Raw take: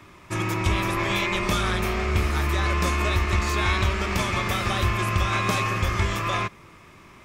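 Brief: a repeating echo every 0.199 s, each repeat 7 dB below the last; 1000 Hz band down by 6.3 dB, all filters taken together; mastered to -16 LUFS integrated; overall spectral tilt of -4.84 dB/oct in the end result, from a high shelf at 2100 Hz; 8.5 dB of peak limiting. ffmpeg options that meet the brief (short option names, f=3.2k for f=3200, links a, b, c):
-af "equalizer=f=1k:t=o:g=-6,highshelf=f=2.1k:g=-6,alimiter=limit=-20.5dB:level=0:latency=1,aecho=1:1:199|398|597|796|995:0.447|0.201|0.0905|0.0407|0.0183,volume=13dB"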